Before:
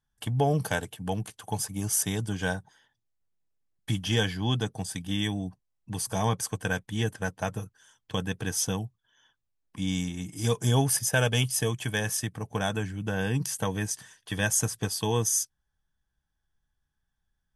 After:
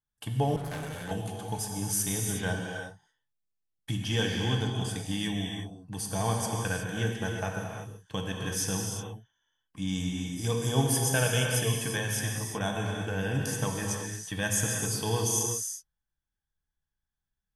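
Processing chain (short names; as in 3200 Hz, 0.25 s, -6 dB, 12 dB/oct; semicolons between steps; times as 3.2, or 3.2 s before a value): gate -53 dBFS, range -7 dB; non-linear reverb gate 0.39 s flat, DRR 0 dB; 0.56–1.11 tube stage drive 29 dB, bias 0.55; gain -4 dB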